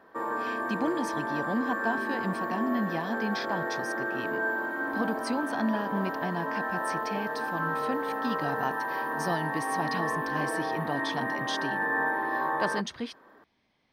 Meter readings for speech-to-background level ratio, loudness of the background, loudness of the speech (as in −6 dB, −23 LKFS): −3.5 dB, −31.0 LKFS, −34.5 LKFS